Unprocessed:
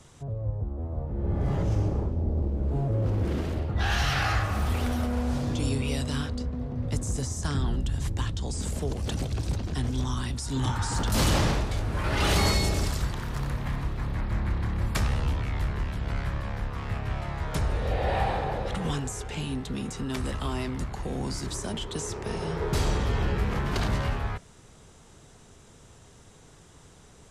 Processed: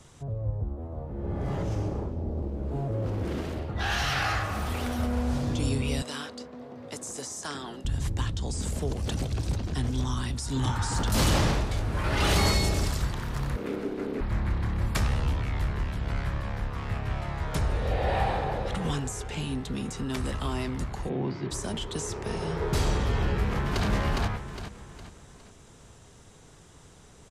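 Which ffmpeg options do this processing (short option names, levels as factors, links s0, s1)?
-filter_complex "[0:a]asettb=1/sr,asplit=3[s0][s1][s2];[s0]atrim=end=0.754[s3];[s1]atrim=start=0.75:end=4.99,asetpts=PTS-STARTPTS,afade=t=in:d=0.004:c=qsin,afade=t=out:st=4.236:d=0.004:c=qsin,lowshelf=f=150:g=-7[s4];[s2]atrim=start=4.986[s5];[s3][s4]acrossfade=d=0.004:c1=hsin:c2=qsin[s6];[s6][s5]acrossfade=d=0.004:c1=qsin:c2=hsin,asettb=1/sr,asplit=3[s7][s8][s9];[s7]atrim=end=6.024[s10];[s8]atrim=start=6.02:end=7.85,asetpts=PTS-STARTPTS,afade=t=in:d=0.004:c=qsin,afade=t=out:st=1.826:d=0.004:c=qsin,highpass=380[s11];[s9]atrim=start=7.846[s12];[s10][s11]acrossfade=d=0.004:c1=hsin:c2=qsin[s13];[s13][s12]acrossfade=d=0.004:c1=qsin:c2=hsin,asettb=1/sr,asplit=3[s14][s15][s16];[s14]atrim=end=13.564[s17];[s15]atrim=start=13.56:end=14.21,asetpts=PTS-STARTPTS,afade=t=in:d=0.004:c=qsin,afade=t=out:st=0.646:d=0.004:c=qsin,aeval=exprs='val(0)*sin(2*PI*340*n/s)':c=same[s18];[s16]atrim=start=14.206[s19];[s17][s18]acrossfade=d=0.004:c1=hsin:c2=qsin[s20];[s20][s19]acrossfade=d=0.004:c1=qsin:c2=hsin,asplit=3[s21][s22][s23];[s21]afade=t=out:st=21.08:d=0.02[s24];[s22]highpass=f=110:w=0.5412,highpass=f=110:w=1.3066,equalizer=f=150:t=q:w=4:g=5,equalizer=f=370:t=q:w=4:g=7,equalizer=f=1400:t=q:w=4:g=-4,lowpass=f=3300:w=0.5412,lowpass=f=3300:w=1.3066,afade=t=in:st=21.08:d=0.02,afade=t=out:st=21.5:d=0.02[s25];[s23]afade=t=in:st=21.5:d=0.02[s26];[s24][s25][s26]amix=inputs=3:normalize=0,asplit=2[s27][s28];[s28]afade=t=in:st=23.41:d=0.01,afade=t=out:st=23.86:d=0.01,aecho=0:1:410|820|1230|1640|2050:0.749894|0.299958|0.119983|0.0479932|0.0191973[s29];[s27][s29]amix=inputs=2:normalize=0"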